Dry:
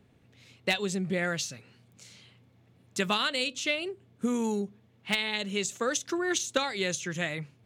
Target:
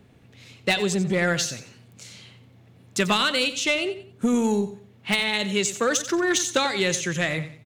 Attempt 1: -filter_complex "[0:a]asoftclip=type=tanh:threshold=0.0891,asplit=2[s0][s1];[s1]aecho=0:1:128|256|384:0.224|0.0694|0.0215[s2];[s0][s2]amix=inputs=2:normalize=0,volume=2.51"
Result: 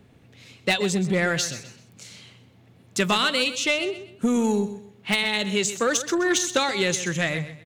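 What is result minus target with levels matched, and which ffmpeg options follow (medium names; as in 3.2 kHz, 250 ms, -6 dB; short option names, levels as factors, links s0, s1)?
echo 37 ms late
-filter_complex "[0:a]asoftclip=type=tanh:threshold=0.0891,asplit=2[s0][s1];[s1]aecho=0:1:91|182|273:0.224|0.0694|0.0215[s2];[s0][s2]amix=inputs=2:normalize=0,volume=2.51"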